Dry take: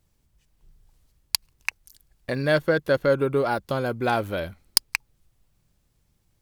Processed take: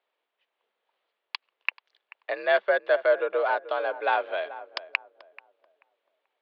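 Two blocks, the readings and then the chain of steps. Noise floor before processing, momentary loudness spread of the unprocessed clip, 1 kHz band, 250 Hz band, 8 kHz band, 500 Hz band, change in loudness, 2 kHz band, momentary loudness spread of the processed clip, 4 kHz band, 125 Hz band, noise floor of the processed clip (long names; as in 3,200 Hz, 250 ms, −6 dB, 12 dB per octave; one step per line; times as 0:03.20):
−69 dBFS, 10 LU, +1.0 dB, −18.0 dB, below −35 dB, −1.5 dB, −2.0 dB, +0.5 dB, 15 LU, −9.5 dB, below −40 dB, −83 dBFS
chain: on a send: feedback echo with a low-pass in the loop 435 ms, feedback 32%, low-pass 1,100 Hz, level −14 dB
on the sum: single-sideband voice off tune +57 Hz 430–3,500 Hz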